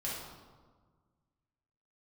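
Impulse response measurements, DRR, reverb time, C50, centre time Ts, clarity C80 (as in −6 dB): −7.0 dB, 1.5 s, 0.0 dB, 79 ms, 3.0 dB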